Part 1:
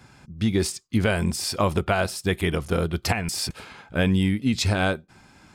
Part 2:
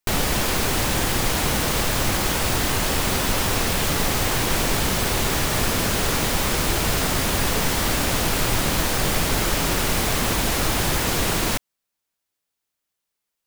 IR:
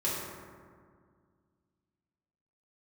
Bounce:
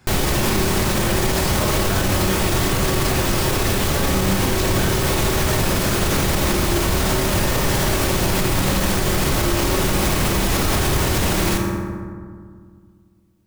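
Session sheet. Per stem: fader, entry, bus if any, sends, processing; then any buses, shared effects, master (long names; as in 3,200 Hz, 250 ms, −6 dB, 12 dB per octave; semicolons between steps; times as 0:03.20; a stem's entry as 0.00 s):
−4.5 dB, 0.00 s, send −9 dB, no processing
+0.5 dB, 0.00 s, send −7 dB, low-shelf EQ 390 Hz +3.5 dB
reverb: on, RT60 2.0 s, pre-delay 3 ms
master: brickwall limiter −9.5 dBFS, peak gain reduction 9 dB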